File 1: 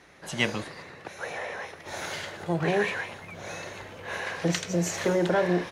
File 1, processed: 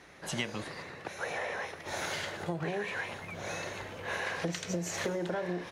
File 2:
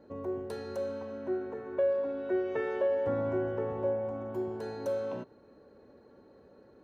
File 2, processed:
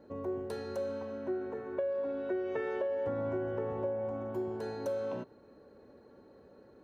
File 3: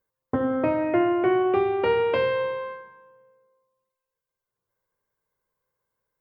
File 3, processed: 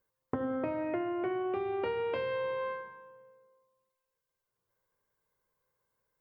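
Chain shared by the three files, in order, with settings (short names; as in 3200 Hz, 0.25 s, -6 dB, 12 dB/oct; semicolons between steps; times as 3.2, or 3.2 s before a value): compressor 16:1, threshold -30 dBFS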